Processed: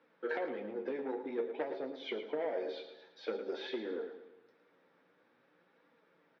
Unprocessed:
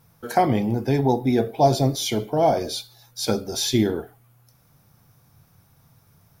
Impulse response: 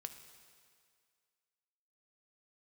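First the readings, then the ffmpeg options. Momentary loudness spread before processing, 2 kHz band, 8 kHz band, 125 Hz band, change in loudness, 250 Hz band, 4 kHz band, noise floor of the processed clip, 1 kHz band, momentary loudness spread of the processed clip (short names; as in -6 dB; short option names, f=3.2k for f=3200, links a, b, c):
10 LU, -9.0 dB, under -40 dB, under -35 dB, -17.0 dB, -20.0 dB, -20.0 dB, -71 dBFS, -22.5 dB, 7 LU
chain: -filter_complex "[0:a]acrossover=split=2700[a][b];[b]acompressor=threshold=-38dB:ratio=4:attack=1:release=60[c];[a][c]amix=inputs=2:normalize=0,aemphasis=mode=reproduction:type=75kf,acompressor=threshold=-27dB:ratio=12,aeval=exprs='val(0)+0.00126*(sin(2*PI*60*n/s)+sin(2*PI*2*60*n/s)/2+sin(2*PI*3*60*n/s)/3+sin(2*PI*4*60*n/s)/4+sin(2*PI*5*60*n/s)/5)':c=same,flanger=delay=3.4:depth=9.1:regen=52:speed=0.51:shape=triangular,asoftclip=type=tanh:threshold=-29.5dB,highpass=f=320:w=0.5412,highpass=f=320:w=1.3066,equalizer=f=510:t=q:w=4:g=6,equalizer=f=720:t=q:w=4:g=-10,equalizer=f=1.1k:t=q:w=4:g=-5,equalizer=f=1.8k:t=q:w=4:g=5,lowpass=f=3.7k:w=0.5412,lowpass=f=3.7k:w=1.3066,aecho=1:1:111|222|333|444|555:0.299|0.131|0.0578|0.0254|0.0112,asplit=2[d][e];[1:a]atrim=start_sample=2205,adelay=11[f];[e][f]afir=irnorm=-1:irlink=0,volume=-10dB[g];[d][g]amix=inputs=2:normalize=0,volume=2dB"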